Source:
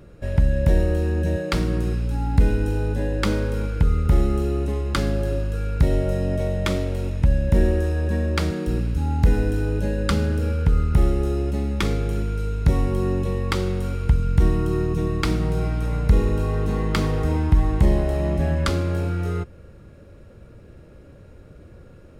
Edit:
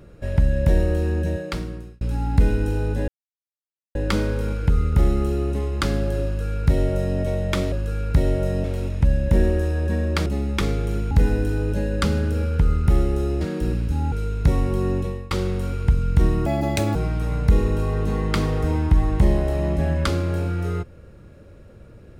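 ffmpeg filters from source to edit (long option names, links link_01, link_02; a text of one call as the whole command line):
ffmpeg -i in.wav -filter_complex "[0:a]asplit=12[link_01][link_02][link_03][link_04][link_05][link_06][link_07][link_08][link_09][link_10][link_11][link_12];[link_01]atrim=end=2.01,asetpts=PTS-STARTPTS,afade=type=out:start_time=1.14:duration=0.87[link_13];[link_02]atrim=start=2.01:end=3.08,asetpts=PTS-STARTPTS,afade=type=in:duration=0.004:curve=hsin,afade=type=out:start_time=1.066:duration=0.004:curve=hsin,apad=pad_dur=0.87[link_14];[link_03]atrim=start=3.08:end=6.852,asetpts=PTS-STARTPTS,afade=type=in:duration=0.004:curve=hsin[link_15];[link_04]atrim=start=5.378:end=6.302[link_16];[link_05]atrim=start=6.848:end=8.472[link_17];[link_06]atrim=start=11.478:end=12.332[link_18];[link_07]atrim=start=9.178:end=11.482[link_19];[link_08]atrim=start=8.468:end=9.182[link_20];[link_09]atrim=start=12.328:end=13.52,asetpts=PTS-STARTPTS,afade=type=out:start_time=0.862:duration=0.33:silence=0.125893[link_21];[link_10]atrim=start=13.52:end=14.674,asetpts=PTS-STARTPTS,afade=type=in:duration=0.004:curve=hsin:silence=0.125893[link_22];[link_11]atrim=start=14.67:end=15.56,asetpts=PTS-STARTPTS,asetrate=79821,aresample=44100[link_23];[link_12]atrim=start=15.556[link_24];[link_13][link_14][link_15]concat=n=3:v=0:a=1[link_25];[link_25][link_16]acrossfade=duration=0.004:curve1=hsin:curve2=hsin[link_26];[link_26][link_17]acrossfade=duration=0.004:curve1=hsin:curve2=hsin[link_27];[link_27][link_18]acrossfade=duration=0.004:curve1=hsin:curve2=hsin[link_28];[link_28][link_19]acrossfade=duration=0.004:curve1=hsin:curve2=hsin[link_29];[link_29][link_20]acrossfade=duration=0.004:curve1=hsin:curve2=hsin[link_30];[link_21][link_22]concat=n=2:v=0:a=1[link_31];[link_30][link_31]acrossfade=duration=0.004:curve1=hsin:curve2=hsin[link_32];[link_32][link_23]acrossfade=duration=0.004:curve1=hsin:curve2=hsin[link_33];[link_33][link_24]acrossfade=duration=0.004:curve1=hsin:curve2=hsin" out.wav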